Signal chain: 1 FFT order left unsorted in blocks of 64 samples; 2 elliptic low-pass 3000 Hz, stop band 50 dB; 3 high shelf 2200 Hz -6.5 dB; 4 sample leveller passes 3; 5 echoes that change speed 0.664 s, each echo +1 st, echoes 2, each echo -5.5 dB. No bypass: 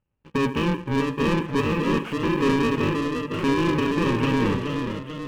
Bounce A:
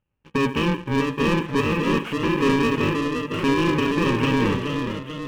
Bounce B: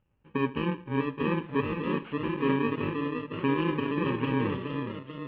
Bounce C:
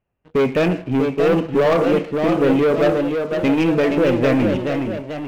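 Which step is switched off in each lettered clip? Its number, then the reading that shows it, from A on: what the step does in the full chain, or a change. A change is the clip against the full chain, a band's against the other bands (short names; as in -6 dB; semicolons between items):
3, 4 kHz band +1.5 dB; 4, crest factor change +4.0 dB; 1, 500 Hz band +7.5 dB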